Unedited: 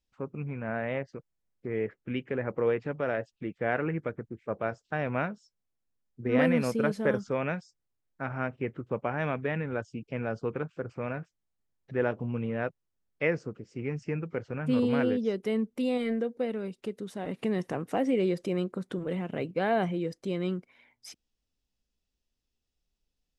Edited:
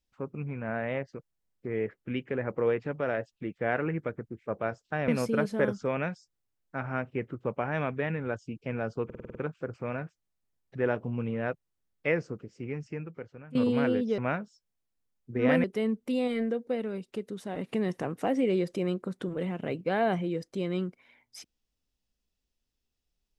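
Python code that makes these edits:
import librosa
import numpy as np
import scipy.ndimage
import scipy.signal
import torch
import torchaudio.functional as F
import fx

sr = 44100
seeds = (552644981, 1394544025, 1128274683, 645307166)

y = fx.edit(x, sr, fx.move(start_s=5.08, length_s=1.46, to_s=15.34),
    fx.stutter(start_s=10.51, slice_s=0.05, count=7),
    fx.fade_out_to(start_s=13.57, length_s=1.14, floor_db=-17.5), tone=tone)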